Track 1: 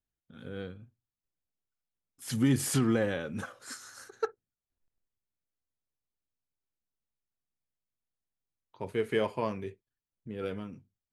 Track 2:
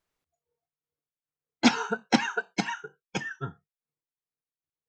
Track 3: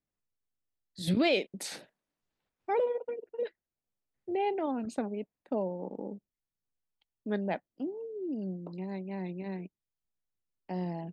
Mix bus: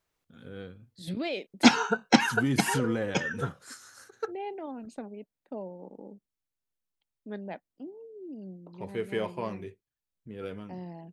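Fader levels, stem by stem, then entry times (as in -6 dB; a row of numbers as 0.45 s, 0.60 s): -2.5 dB, +2.5 dB, -6.5 dB; 0.00 s, 0.00 s, 0.00 s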